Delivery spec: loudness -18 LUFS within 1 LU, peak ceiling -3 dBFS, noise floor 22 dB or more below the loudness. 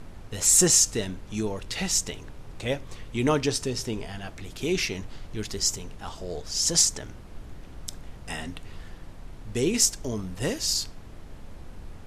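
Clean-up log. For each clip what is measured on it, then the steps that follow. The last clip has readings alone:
noise floor -44 dBFS; noise floor target -47 dBFS; loudness -25.0 LUFS; peak level -6.5 dBFS; loudness target -18.0 LUFS
-> noise print and reduce 6 dB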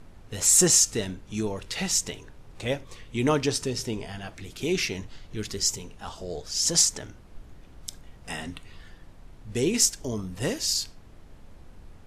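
noise floor -49 dBFS; loudness -25.0 LUFS; peak level -6.5 dBFS; loudness target -18.0 LUFS
-> trim +7 dB; peak limiter -3 dBFS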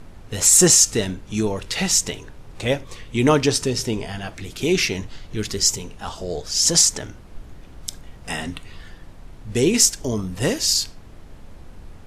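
loudness -18.5 LUFS; peak level -3.0 dBFS; noise floor -42 dBFS

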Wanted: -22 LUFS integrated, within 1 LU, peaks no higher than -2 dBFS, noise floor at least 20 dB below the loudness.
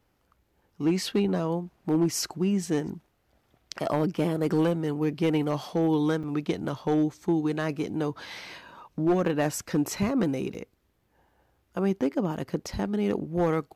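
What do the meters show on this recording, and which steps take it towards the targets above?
clipped samples 0.7%; clipping level -17.5 dBFS; dropouts 2; longest dropout 5.7 ms; loudness -27.5 LUFS; peak level -17.5 dBFS; loudness target -22.0 LUFS
-> clip repair -17.5 dBFS; interpolate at 6.23/10.54 s, 5.7 ms; trim +5.5 dB

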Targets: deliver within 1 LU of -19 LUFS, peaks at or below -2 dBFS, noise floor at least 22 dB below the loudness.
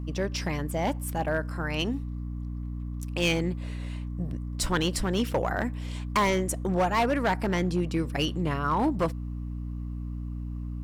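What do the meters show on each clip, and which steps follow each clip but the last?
clipped samples 1.1%; clipping level -19.0 dBFS; hum 60 Hz; highest harmonic 300 Hz; hum level -32 dBFS; loudness -29.0 LUFS; peak level -19.0 dBFS; loudness target -19.0 LUFS
-> clip repair -19 dBFS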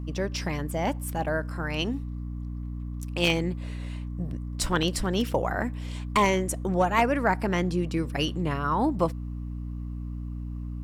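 clipped samples 0.0%; hum 60 Hz; highest harmonic 300 Hz; hum level -31 dBFS
-> hum notches 60/120/180/240/300 Hz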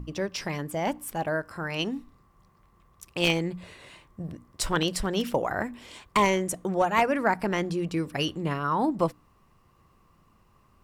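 hum not found; loudness -28.0 LUFS; peak level -9.5 dBFS; loudness target -19.0 LUFS
-> trim +9 dB; peak limiter -2 dBFS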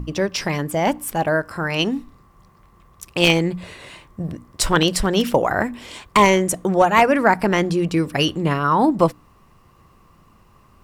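loudness -19.0 LUFS; peak level -2.0 dBFS; noise floor -53 dBFS

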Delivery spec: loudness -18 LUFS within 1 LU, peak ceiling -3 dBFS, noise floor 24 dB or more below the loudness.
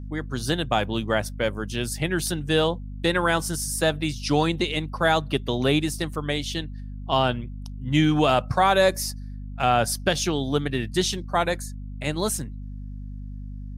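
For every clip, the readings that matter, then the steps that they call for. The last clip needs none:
hum 50 Hz; highest harmonic 250 Hz; hum level -33 dBFS; loudness -24.0 LUFS; peak level -7.0 dBFS; loudness target -18.0 LUFS
-> de-hum 50 Hz, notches 5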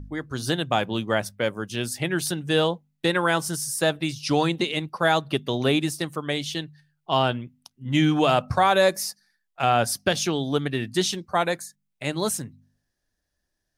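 hum not found; loudness -24.5 LUFS; peak level -7.5 dBFS; loudness target -18.0 LUFS
-> trim +6.5 dB; peak limiter -3 dBFS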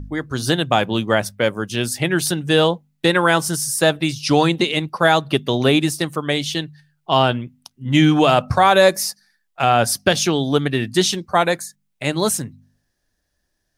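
loudness -18.0 LUFS; peak level -3.0 dBFS; noise floor -71 dBFS

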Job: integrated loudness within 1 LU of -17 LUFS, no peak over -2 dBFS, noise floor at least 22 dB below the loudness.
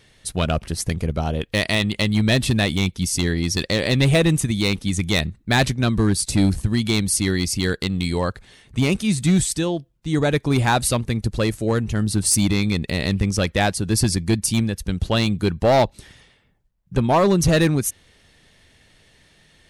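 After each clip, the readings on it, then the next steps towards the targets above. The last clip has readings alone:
clipped samples 0.8%; clipping level -10.5 dBFS; loudness -20.5 LUFS; peak level -10.5 dBFS; loudness target -17.0 LUFS
-> clip repair -10.5 dBFS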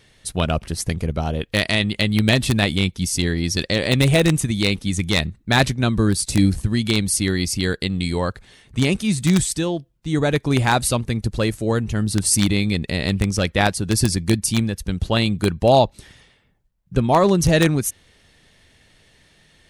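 clipped samples 0.0%; loudness -20.0 LUFS; peak level -1.5 dBFS; loudness target -17.0 LUFS
-> trim +3 dB; peak limiter -2 dBFS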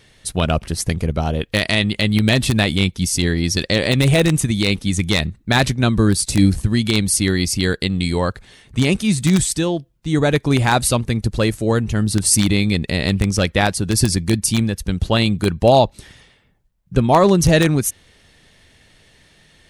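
loudness -17.5 LUFS; peak level -2.0 dBFS; noise floor -55 dBFS

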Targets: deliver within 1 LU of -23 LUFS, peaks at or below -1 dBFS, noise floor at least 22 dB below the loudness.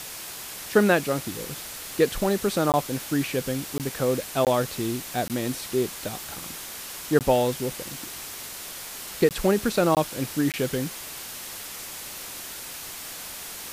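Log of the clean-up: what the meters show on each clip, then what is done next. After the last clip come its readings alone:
dropouts 8; longest dropout 18 ms; noise floor -38 dBFS; noise floor target -49 dBFS; loudness -27.0 LUFS; peak level -6.0 dBFS; loudness target -23.0 LUFS
-> interpolate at 2.72/3.78/4.45/5.28/7.19/9.29/9.95/10.52 s, 18 ms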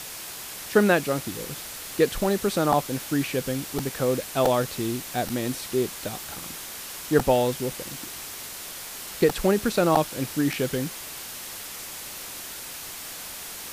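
dropouts 0; noise floor -38 dBFS; noise floor target -49 dBFS
-> noise reduction 11 dB, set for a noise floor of -38 dBFS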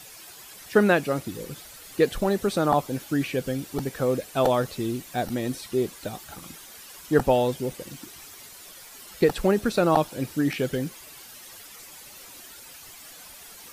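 noise floor -46 dBFS; noise floor target -48 dBFS
-> noise reduction 6 dB, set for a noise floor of -46 dBFS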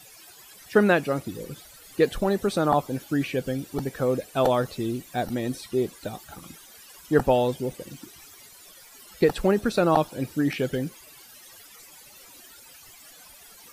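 noise floor -50 dBFS; loudness -25.5 LUFS; peak level -6.0 dBFS; loudness target -23.0 LUFS
-> trim +2.5 dB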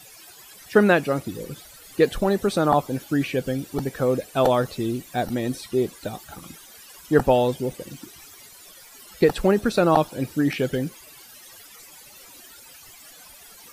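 loudness -23.0 LUFS; peak level -3.5 dBFS; noise floor -47 dBFS

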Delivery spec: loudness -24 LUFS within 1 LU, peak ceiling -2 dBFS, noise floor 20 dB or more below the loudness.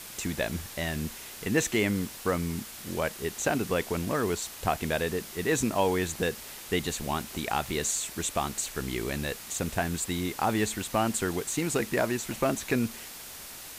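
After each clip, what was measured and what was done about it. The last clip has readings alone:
noise floor -44 dBFS; noise floor target -50 dBFS; loudness -30.0 LUFS; peak level -11.5 dBFS; loudness target -24.0 LUFS
-> noise reduction 6 dB, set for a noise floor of -44 dBFS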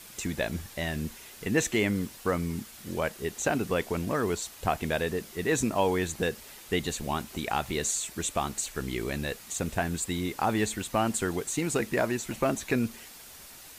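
noise floor -48 dBFS; noise floor target -50 dBFS
-> noise reduction 6 dB, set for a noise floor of -48 dBFS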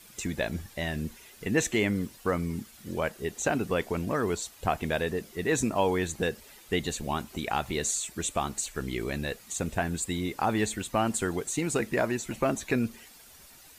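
noise floor -53 dBFS; loudness -30.0 LUFS; peak level -11.5 dBFS; loudness target -24.0 LUFS
-> trim +6 dB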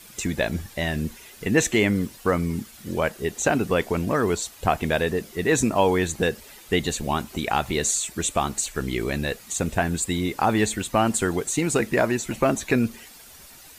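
loudness -24.0 LUFS; peak level -5.5 dBFS; noise floor -47 dBFS

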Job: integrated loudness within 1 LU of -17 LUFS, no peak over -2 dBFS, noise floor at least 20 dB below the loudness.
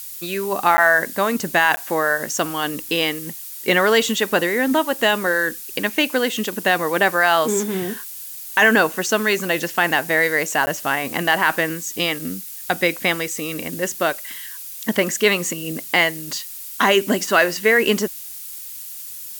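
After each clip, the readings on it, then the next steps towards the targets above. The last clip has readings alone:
dropouts 3; longest dropout 10 ms; noise floor -34 dBFS; noise floor target -40 dBFS; loudness -19.5 LUFS; peak level -3.0 dBFS; loudness target -17.0 LUFS
-> interpolate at 0.77/1.76/10.66 s, 10 ms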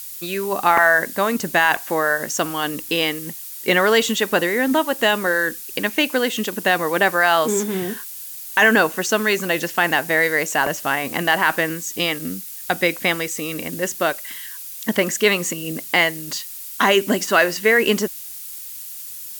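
dropouts 0; noise floor -34 dBFS; noise floor target -39 dBFS
-> noise print and reduce 6 dB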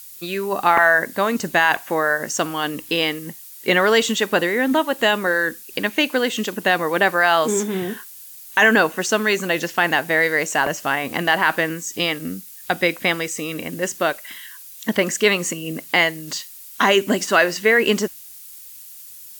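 noise floor -40 dBFS; loudness -19.5 LUFS; peak level -3.5 dBFS; loudness target -17.0 LUFS
-> trim +2.5 dB; peak limiter -2 dBFS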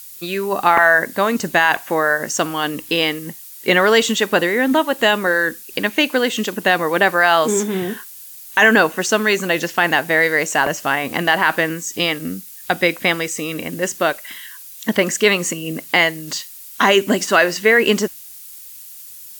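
loudness -17.0 LUFS; peak level -2.0 dBFS; noise floor -38 dBFS

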